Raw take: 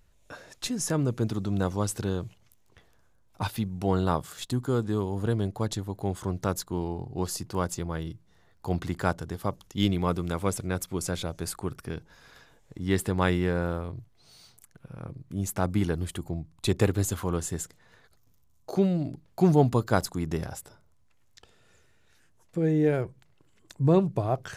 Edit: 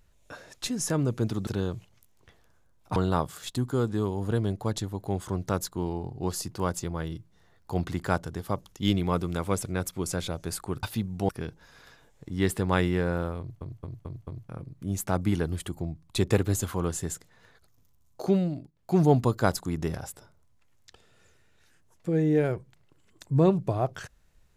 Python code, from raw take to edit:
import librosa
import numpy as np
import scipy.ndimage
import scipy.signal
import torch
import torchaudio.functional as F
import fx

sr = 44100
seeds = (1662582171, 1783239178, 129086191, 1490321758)

y = fx.edit(x, sr, fx.cut(start_s=1.47, length_s=0.49),
    fx.move(start_s=3.45, length_s=0.46, to_s=11.78),
    fx.stutter_over(start_s=13.88, slice_s=0.22, count=5),
    fx.fade_down_up(start_s=18.9, length_s=0.62, db=-17.0, fade_s=0.31), tone=tone)